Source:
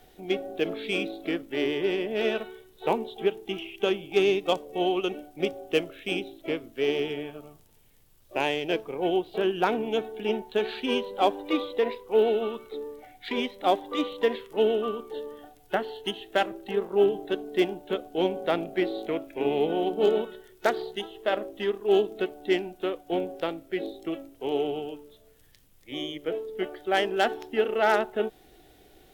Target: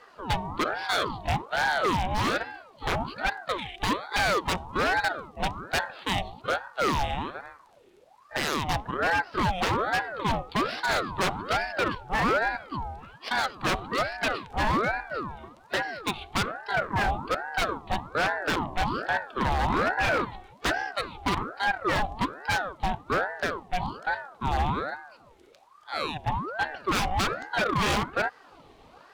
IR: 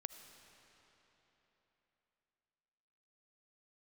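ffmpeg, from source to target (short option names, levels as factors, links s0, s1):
-af "adynamicsmooth=sensitivity=7.5:basefreq=5700,aeval=exprs='0.075*(abs(mod(val(0)/0.075+3,4)-2)-1)':c=same,aeval=exprs='val(0)*sin(2*PI*790*n/s+790*0.55/1.2*sin(2*PI*1.2*n/s))':c=same,volume=2"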